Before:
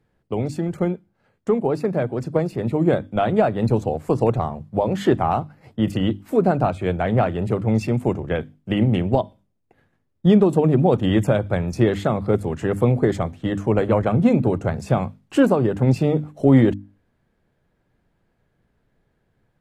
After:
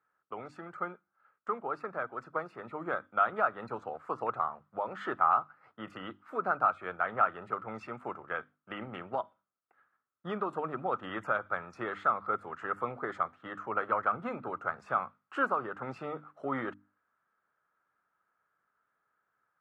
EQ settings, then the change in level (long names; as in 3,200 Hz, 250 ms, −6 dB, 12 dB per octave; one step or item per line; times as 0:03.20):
resonant band-pass 1,300 Hz, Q 8.2
+8.0 dB